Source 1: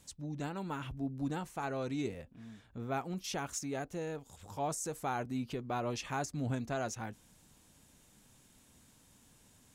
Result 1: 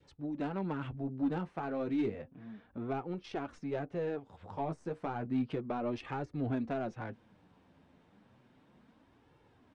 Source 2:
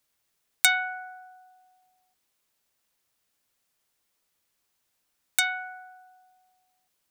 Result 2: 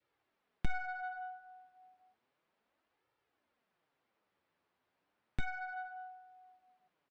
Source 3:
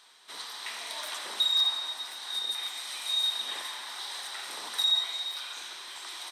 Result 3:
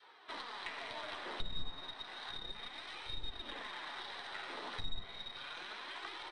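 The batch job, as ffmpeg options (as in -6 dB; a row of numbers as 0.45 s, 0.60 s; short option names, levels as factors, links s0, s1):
-filter_complex "[0:a]highpass=f=190:p=1,adynamicequalizer=threshold=0.00251:dfrequency=970:dqfactor=2:tfrequency=970:tqfactor=2:attack=5:release=100:ratio=0.375:range=2:mode=cutabove:tftype=bell,aeval=exprs='(tanh(5.62*val(0)+0.5)-tanh(0.5))/5.62':c=same,acrossover=split=380[s0][s1];[s1]acompressor=threshold=0.00708:ratio=10[s2];[s0][s2]amix=inputs=2:normalize=0,flanger=delay=2.2:depth=9.5:regen=-21:speed=0.32:shape=sinusoidal,equalizer=f=7000:t=o:w=0.47:g=-9.5,asplit=2[s3][s4];[s4]aeval=exprs='0.0126*(abs(mod(val(0)/0.0126+3,4)-2)-1)':c=same,volume=0.376[s5];[s3][s5]amix=inputs=2:normalize=0,adynamicsmooth=sensitivity=7.5:basefreq=1900,aresample=22050,aresample=44100,volume=2.66"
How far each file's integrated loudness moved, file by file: +1.0 LU, -18.0 LU, -14.5 LU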